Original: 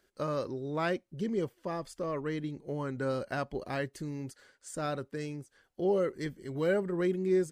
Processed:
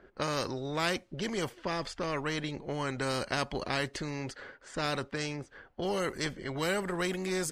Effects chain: low-pass opened by the level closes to 1500 Hz, open at -28 dBFS; spectral compressor 2:1; gain +3 dB

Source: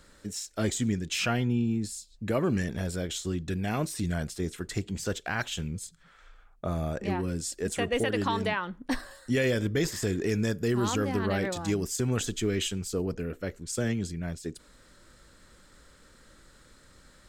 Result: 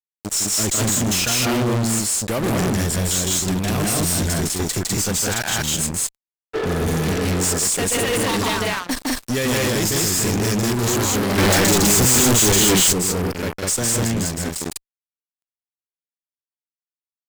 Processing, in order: in parallel at +2.5 dB: compressor 4:1, threshold -43 dBFS, peak gain reduction 17 dB; on the sum: tone controls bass +2 dB, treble +13 dB; added harmonics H 7 -18 dB, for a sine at -8 dBFS; on a send: loudspeakers at several distances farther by 54 m -5 dB, 69 m 0 dB; 6.56–7.56 on the sum: spectral repair 290–1800 Hz after; fuzz box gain 37 dB, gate -44 dBFS; 11.38–12.93 sample leveller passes 5; gain -4.5 dB

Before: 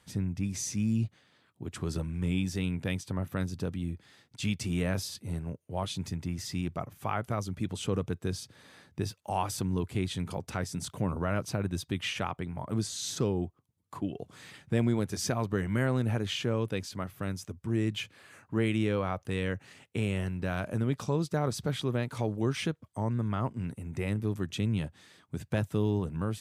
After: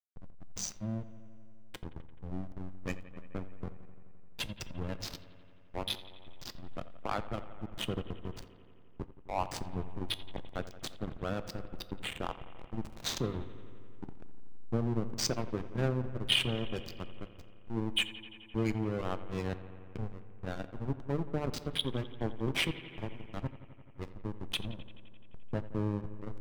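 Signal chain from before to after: spectral gate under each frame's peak -15 dB strong; weighting filter D; spectral gain 11.97–13.05, 1300–6900 Hz -7 dB; high shelf 2600 Hz -4.5 dB; notches 50/100/150/200/250/300/350 Hz; backlash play -24.5 dBFS; analogue delay 86 ms, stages 2048, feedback 79%, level -16 dB; reverb, pre-delay 3 ms, DRR 16.5 dB; gain +2 dB

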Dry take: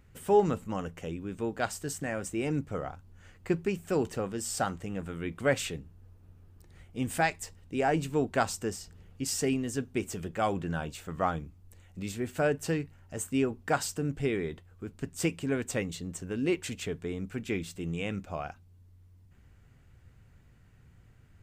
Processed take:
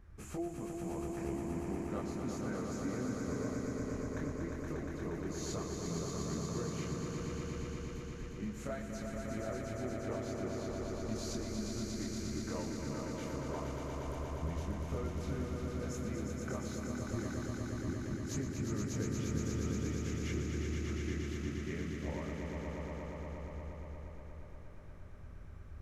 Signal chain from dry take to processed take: high shelf 2600 Hz -8.5 dB; compressor 12:1, threshold -42 dBFS, peak gain reduction 24 dB; chorus voices 4, 0.73 Hz, delay 22 ms, depth 2.2 ms; varispeed -17%; on a send: swelling echo 0.118 s, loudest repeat 5, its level -5 dB; on the sum: gain +5 dB

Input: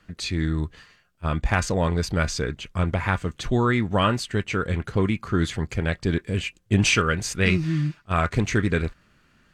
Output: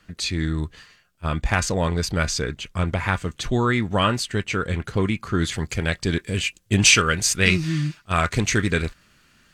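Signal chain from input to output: high shelf 2700 Hz +6 dB, from 5.52 s +11.5 dB

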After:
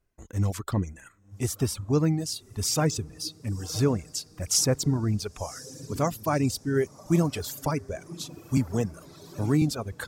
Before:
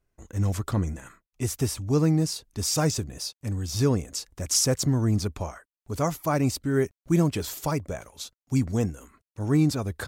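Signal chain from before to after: diffused feedback echo 1.042 s, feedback 58%, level -14 dB; reverb removal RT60 1.7 s; 8.57–9.62 three-band squash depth 40%

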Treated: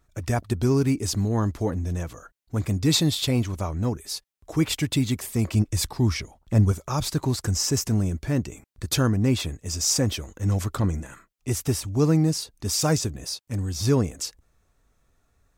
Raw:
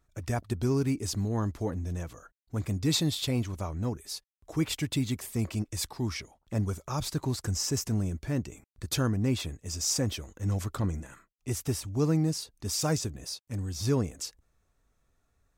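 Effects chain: 5.53–6.72 low shelf 180 Hz +7.5 dB; gain +6 dB

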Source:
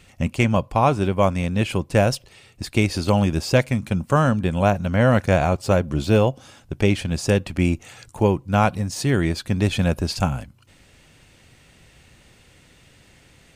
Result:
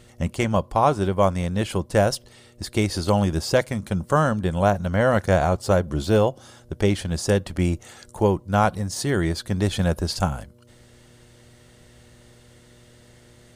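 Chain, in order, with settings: thirty-one-band EQ 125 Hz -9 dB, 250 Hz -7 dB, 2500 Hz -10 dB, 10000 Hz +3 dB; buzz 120 Hz, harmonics 5, -54 dBFS

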